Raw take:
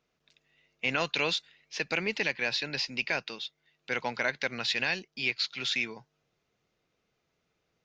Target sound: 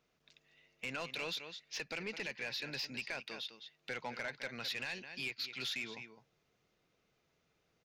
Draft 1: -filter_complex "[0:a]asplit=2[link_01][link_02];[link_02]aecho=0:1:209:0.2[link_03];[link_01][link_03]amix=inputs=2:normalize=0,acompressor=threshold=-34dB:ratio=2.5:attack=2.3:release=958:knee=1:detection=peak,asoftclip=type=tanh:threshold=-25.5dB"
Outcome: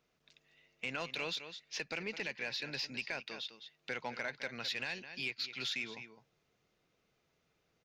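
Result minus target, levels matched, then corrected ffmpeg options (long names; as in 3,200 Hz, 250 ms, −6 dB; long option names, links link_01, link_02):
soft clipping: distortion −9 dB
-filter_complex "[0:a]asplit=2[link_01][link_02];[link_02]aecho=0:1:209:0.2[link_03];[link_01][link_03]amix=inputs=2:normalize=0,acompressor=threshold=-34dB:ratio=2.5:attack=2.3:release=958:knee=1:detection=peak,asoftclip=type=tanh:threshold=-32dB"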